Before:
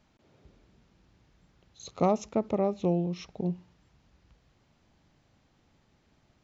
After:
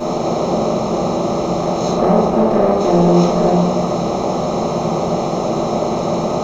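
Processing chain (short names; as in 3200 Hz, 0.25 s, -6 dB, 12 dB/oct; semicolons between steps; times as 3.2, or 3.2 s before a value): per-bin compression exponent 0.2; 1.93–2.8 LPF 2200 Hz 6 dB/oct; sample leveller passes 1; reverb RT60 0.80 s, pre-delay 3 ms, DRR -13 dB; gain -8 dB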